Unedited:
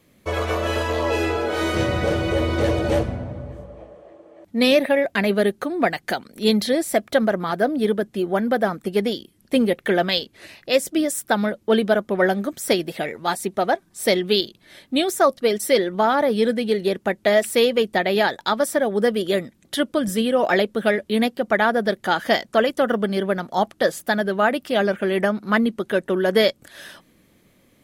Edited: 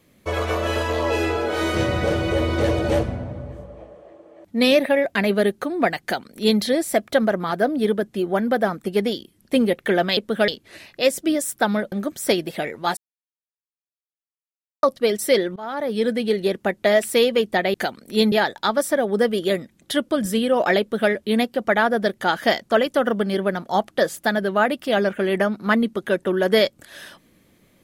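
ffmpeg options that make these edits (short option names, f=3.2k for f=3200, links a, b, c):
-filter_complex "[0:a]asplit=9[a][b][c][d][e][f][g][h][i];[a]atrim=end=10.172[j];[b]atrim=start=20.628:end=20.942[k];[c]atrim=start=10.168:end=11.612[l];[d]atrim=start=12.328:end=13.38,asetpts=PTS-STARTPTS,afade=t=out:st=1.048:d=0.004:c=hsin[m];[e]atrim=start=13.38:end=15.24,asetpts=PTS-STARTPTS,volume=0[n];[f]atrim=start=15.24:end=15.97,asetpts=PTS-STARTPTS,afade=t=in:d=0.004:c=hsin,afade=t=out:st=0.726:d=0.004:c=hsin:silence=0.0794328[o];[g]atrim=start=15.97:end=18.152,asetpts=PTS-STARTPTS,afade=t=in:d=0.6:silence=0.0794328[p];[h]atrim=start=6.018:end=6.602[q];[i]atrim=start=18.148[r];[j][k]acrossfade=d=0.004:c1=hsin:c2=hsin[s];[s][l]acrossfade=d=0.004:c1=hsin:c2=hsin[t];[m][n][o][p]concat=n=4:v=0:a=1[u];[t][u]acrossfade=d=0.004:c1=hsin:c2=hsin[v];[v][q]acrossfade=d=0.004:c1=hsin:c2=hsin[w];[w][r]acrossfade=d=0.004:c1=hsin:c2=hsin"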